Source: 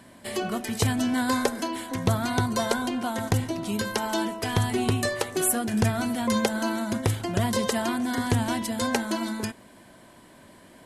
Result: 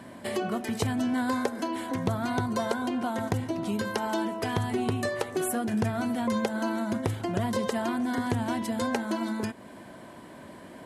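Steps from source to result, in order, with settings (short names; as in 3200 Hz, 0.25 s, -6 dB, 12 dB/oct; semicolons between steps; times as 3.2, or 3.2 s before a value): HPF 110 Hz 6 dB/oct; high shelf 2400 Hz -9.5 dB; compressor 2:1, threshold -39 dBFS, peak gain reduction 11 dB; gain +7 dB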